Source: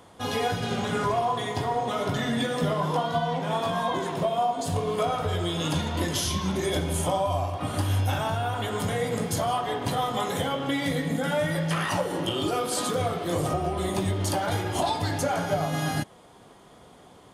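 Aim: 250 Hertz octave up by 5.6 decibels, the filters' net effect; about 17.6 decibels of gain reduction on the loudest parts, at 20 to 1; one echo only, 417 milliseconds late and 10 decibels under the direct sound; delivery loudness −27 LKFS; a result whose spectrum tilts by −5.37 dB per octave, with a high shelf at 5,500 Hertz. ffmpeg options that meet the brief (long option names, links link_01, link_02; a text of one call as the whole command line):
ffmpeg -i in.wav -af "equalizer=frequency=250:width_type=o:gain=7.5,highshelf=frequency=5500:gain=-5.5,acompressor=threshold=-35dB:ratio=20,aecho=1:1:417:0.316,volume=12dB" out.wav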